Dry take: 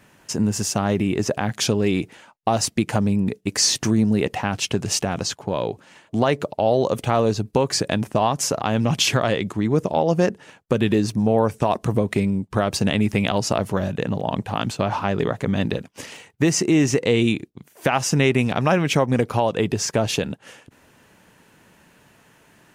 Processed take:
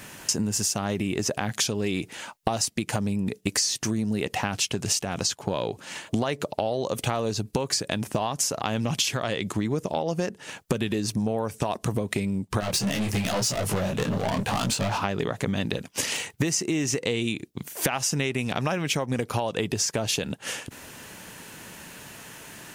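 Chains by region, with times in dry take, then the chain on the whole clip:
12.60–14.98 s: hard clipper -16 dBFS + waveshaping leveller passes 2 + detune thickener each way 31 cents
whole clip: treble shelf 2.9 kHz +9.5 dB; compression 12:1, threshold -31 dBFS; trim +8 dB

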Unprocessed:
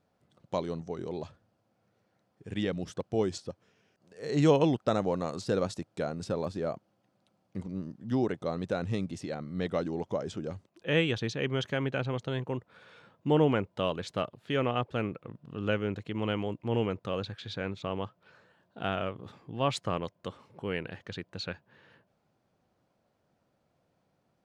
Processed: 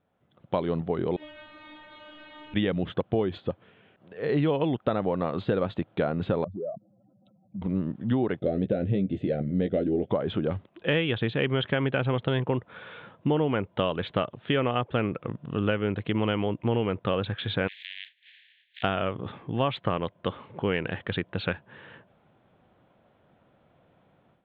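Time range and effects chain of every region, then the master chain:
1.16–2.54 s: one-bit delta coder 64 kbps, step -35.5 dBFS + treble shelf 2.6 kHz +9 dB + inharmonic resonator 300 Hz, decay 0.6 s, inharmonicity 0.002
6.44–7.62 s: spectral contrast enhancement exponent 2.9 + compression 2:1, threshold -51 dBFS
8.39–10.10 s: Butterworth band-stop 990 Hz, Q 1.1 + high-order bell 2.4 kHz -9 dB 2.5 oct + doubling 15 ms -7 dB
17.67–18.82 s: spectral contrast reduction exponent 0.2 + steep high-pass 1.7 kHz 96 dB/octave + compression 3:1, threshold -48 dBFS
whole clip: level rider gain up to 12 dB; elliptic low-pass 3.5 kHz, stop band 40 dB; compression, threshold -22 dBFS

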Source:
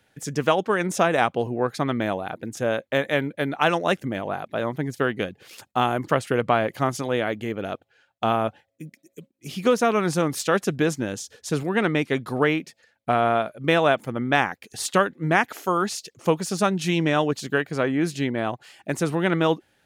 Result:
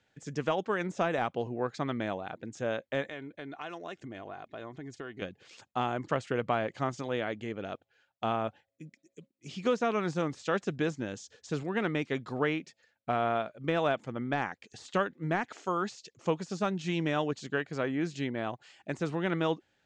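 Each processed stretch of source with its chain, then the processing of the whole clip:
3.09–5.22 s: comb 2.8 ms, depth 37% + compression 3:1, threshold -32 dBFS
whole clip: de-esser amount 75%; elliptic low-pass 7.5 kHz, stop band 60 dB; trim -7.5 dB

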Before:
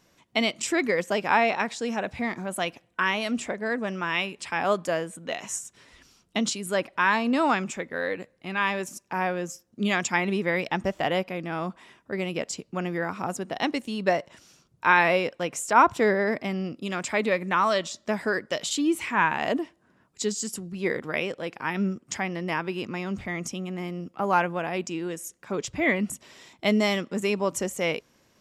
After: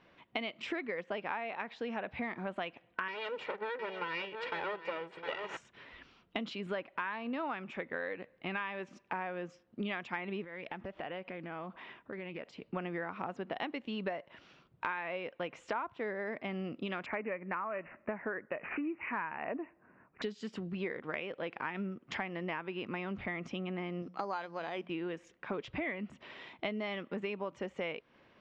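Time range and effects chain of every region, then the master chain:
3.08–5.57 s: comb filter that takes the minimum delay 2.1 ms + high-pass 190 Hz + delay 708 ms -12 dB
10.44–12.62 s: compression, threshold -40 dBFS + loudspeaker Doppler distortion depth 0.14 ms
17.06–20.22 s: low-pass 2.7 kHz + careless resampling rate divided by 8×, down none, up filtered
24.02–24.90 s: bass shelf 140 Hz -10 dB + hum notches 60/120/180 Hz + careless resampling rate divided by 8×, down filtered, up hold
whole clip: low-pass 3.2 kHz 24 dB/octave; bass shelf 250 Hz -7 dB; compression 10:1, threshold -37 dBFS; trim +2.5 dB

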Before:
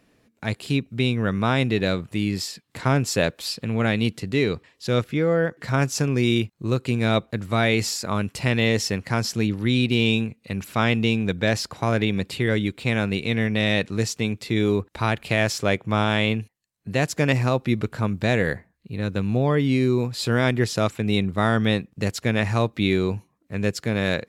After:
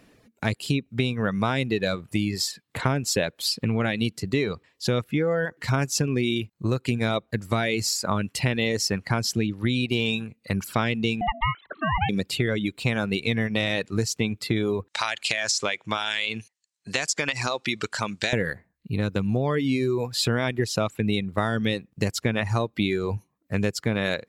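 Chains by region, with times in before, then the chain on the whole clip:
11.21–12.09 s: formants replaced by sine waves + ring modulator 460 Hz + upward compressor, threshold -43 dBFS
14.88–18.33 s: low-pass 7.6 kHz 24 dB/octave + tilt EQ +4.5 dB/octave + compression 4:1, threshold -23 dBFS
whole clip: reverb removal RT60 1.3 s; compression, threshold -26 dBFS; trim +5.5 dB

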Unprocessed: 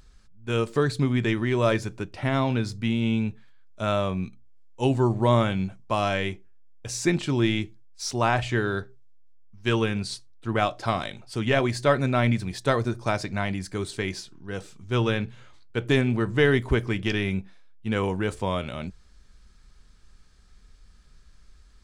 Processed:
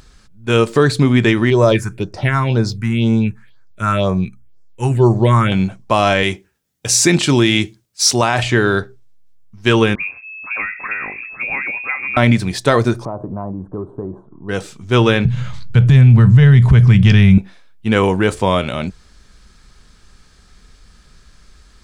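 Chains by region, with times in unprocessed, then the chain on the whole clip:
1.50–5.52 s: phase shifter stages 4, 2 Hz, lowest notch 530–3000 Hz + peaking EQ 260 Hz -11.5 dB 0.23 oct + band-stop 1.2 kHz, Q 29
6.23–8.43 s: high-pass 56 Hz + treble shelf 3.1 kHz +8 dB
9.95–12.17 s: compression, threshold -32 dBFS + phase dispersion lows, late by 56 ms, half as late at 660 Hz + frequency inversion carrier 2.6 kHz
13.05–14.49 s: elliptic low-pass 1.1 kHz, stop band 50 dB + compression, threshold -33 dBFS
15.25–17.38 s: low-pass 9.4 kHz + resonant low shelf 220 Hz +12 dB, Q 3 + upward compressor, threshold -21 dBFS
whole clip: bass shelf 72 Hz -8 dB; loudness maximiser +13.5 dB; trim -1 dB

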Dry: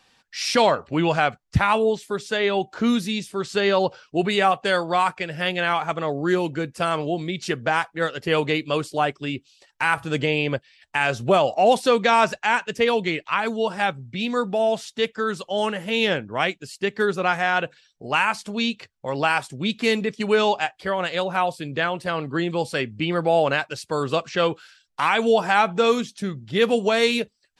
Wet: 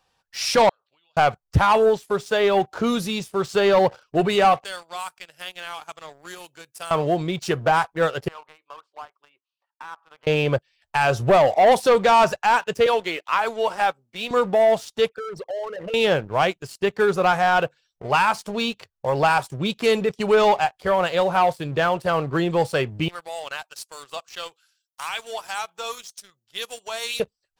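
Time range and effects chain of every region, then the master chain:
0.69–1.17 s: band-pass filter 3.7 kHz, Q 4.2 + compression, threshold -53 dBFS
4.64–6.91 s: pre-emphasis filter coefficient 0.97 + three bands compressed up and down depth 40%
8.28–10.27 s: ladder band-pass 1.2 kHz, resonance 50% + compression 2:1, threshold -45 dBFS
12.86–14.31 s: high-pass 190 Hz 24 dB/octave + bass shelf 390 Hz -11.5 dB
15.09–15.94 s: resonances exaggerated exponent 3 + compression 8:1, threshold -32 dBFS + distance through air 56 m
23.08–27.20 s: differentiator + sweeping bell 1.8 Hz 740–7100 Hz +7 dB
whole clip: graphic EQ 250/2000/4000/8000 Hz -12/-9/-6/-6 dB; waveshaping leveller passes 2; trim +1 dB

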